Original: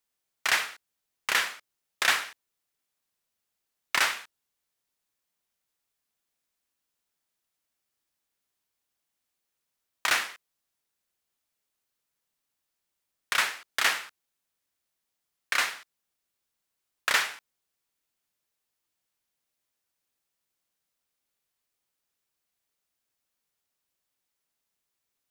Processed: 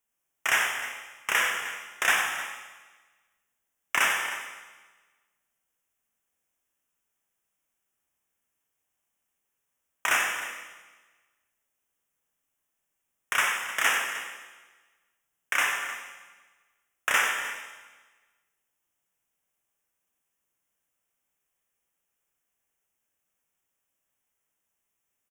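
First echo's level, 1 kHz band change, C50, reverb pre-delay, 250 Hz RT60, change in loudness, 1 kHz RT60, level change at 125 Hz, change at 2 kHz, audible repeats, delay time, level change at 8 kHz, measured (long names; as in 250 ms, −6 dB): −8.5 dB, +3.0 dB, 2.5 dB, 16 ms, 1.4 s, +0.5 dB, 1.3 s, can't be measured, +2.5 dB, 2, 93 ms, +2.0 dB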